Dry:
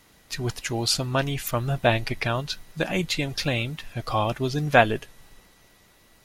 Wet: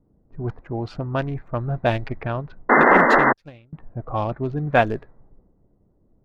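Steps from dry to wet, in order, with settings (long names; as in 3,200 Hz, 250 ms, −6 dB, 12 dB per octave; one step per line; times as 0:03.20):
adaptive Wiener filter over 15 samples
0:02.69–0:03.33: sound drawn into the spectrogram noise 210–2,100 Hz −13 dBFS
high-shelf EQ 2,600 Hz −9 dB
low-pass that shuts in the quiet parts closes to 380 Hz, open at −17 dBFS
0:03.02–0:03.73: expander for the loud parts 2.5 to 1, over −35 dBFS
level +1 dB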